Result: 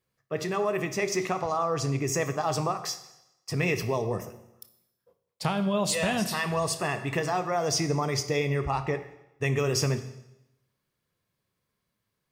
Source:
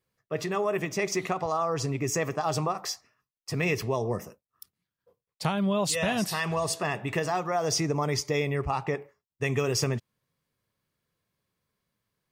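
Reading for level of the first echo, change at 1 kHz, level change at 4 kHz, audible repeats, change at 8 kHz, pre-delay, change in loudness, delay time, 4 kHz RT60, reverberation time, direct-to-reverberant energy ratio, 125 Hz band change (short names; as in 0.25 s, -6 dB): none, +0.5 dB, +0.5 dB, none, +0.5 dB, 22 ms, +0.5 dB, none, 0.85 s, 0.90 s, 10.0 dB, +1.5 dB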